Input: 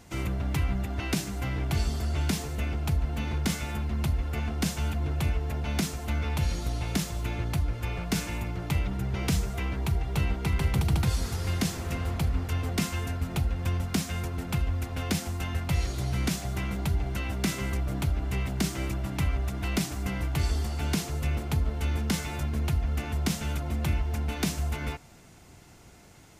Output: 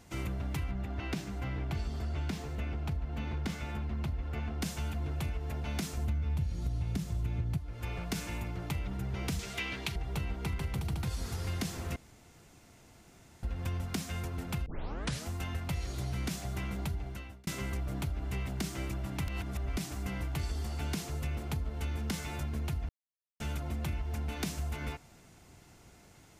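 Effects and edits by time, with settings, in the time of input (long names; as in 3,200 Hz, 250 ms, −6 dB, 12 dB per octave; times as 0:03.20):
0:00.71–0:04.62: parametric band 11,000 Hz −11.5 dB 1.7 octaves
0:05.97–0:07.58: parametric band 98 Hz +15 dB 2.7 octaves
0:09.39–0:09.96: meter weighting curve D
0:11.96–0:13.43: fill with room tone
0:14.66: tape start 0.62 s
0:16.84–0:17.47: fade out
0:19.28–0:19.77: reverse
0:22.89–0:23.40: silence
whole clip: downward compressor, threshold −26 dBFS; level −4.5 dB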